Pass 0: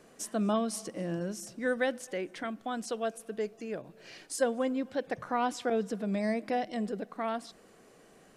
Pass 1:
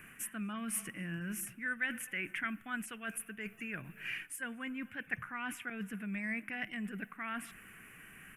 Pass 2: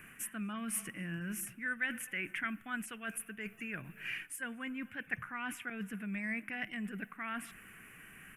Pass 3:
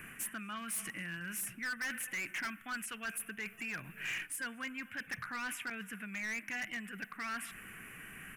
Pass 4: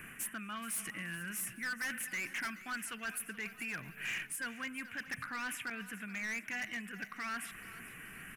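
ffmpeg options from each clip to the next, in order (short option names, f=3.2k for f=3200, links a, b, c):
-af "areverse,acompressor=threshold=-38dB:ratio=6,areverse,firequalizer=gain_entry='entry(110,0);entry(520,-22);entry(1500,5);entry(2600,8);entry(4100,-24);entry(11000,6)':delay=0.05:min_phase=1,volume=7dB"
-af anull
-filter_complex "[0:a]acrossover=split=930[a][b];[a]acompressor=threshold=-51dB:ratio=6[c];[c][b]amix=inputs=2:normalize=0,asoftclip=type=hard:threshold=-39.5dB,volume=4.5dB"
-af "aecho=1:1:428|856|1284|1712:0.158|0.0713|0.0321|0.0144"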